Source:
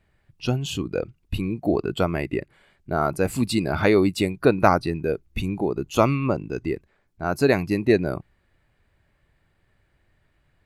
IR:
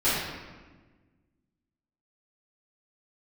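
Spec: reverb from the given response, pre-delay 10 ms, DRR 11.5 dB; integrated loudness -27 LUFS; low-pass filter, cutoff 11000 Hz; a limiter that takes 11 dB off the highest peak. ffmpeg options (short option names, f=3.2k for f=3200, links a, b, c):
-filter_complex "[0:a]lowpass=11k,alimiter=limit=-12.5dB:level=0:latency=1,asplit=2[a][b];[1:a]atrim=start_sample=2205,adelay=10[c];[b][c]afir=irnorm=-1:irlink=0,volume=-26dB[d];[a][d]amix=inputs=2:normalize=0,volume=-1dB"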